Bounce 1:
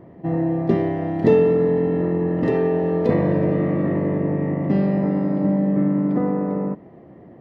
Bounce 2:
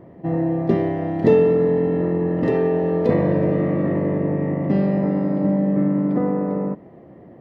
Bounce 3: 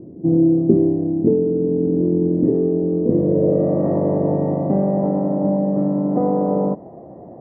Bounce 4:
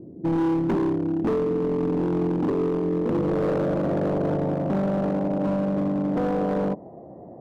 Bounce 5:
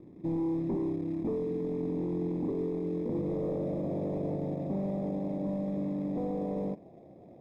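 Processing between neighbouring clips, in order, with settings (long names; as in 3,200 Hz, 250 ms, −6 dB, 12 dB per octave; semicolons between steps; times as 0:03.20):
parametric band 540 Hz +2.5 dB 0.34 octaves
speech leveller within 4 dB 0.5 s; low-pass filter sweep 330 Hz → 760 Hz, 0:03.08–0:03.87; level −1 dB
gain into a clipping stage and back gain 16 dB; level −4 dB
log-companded quantiser 4 bits; moving average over 30 samples; level −9 dB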